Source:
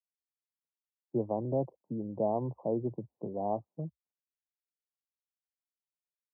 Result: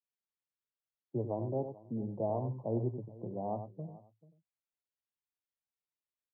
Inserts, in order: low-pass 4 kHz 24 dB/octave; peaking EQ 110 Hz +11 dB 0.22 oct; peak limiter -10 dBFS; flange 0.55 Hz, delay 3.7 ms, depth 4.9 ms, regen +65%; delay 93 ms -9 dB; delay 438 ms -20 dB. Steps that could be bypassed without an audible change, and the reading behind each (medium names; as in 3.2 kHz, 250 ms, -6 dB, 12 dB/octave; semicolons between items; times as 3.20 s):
low-pass 4 kHz: input has nothing above 1.1 kHz; peak limiter -10 dBFS: peak at its input -17.0 dBFS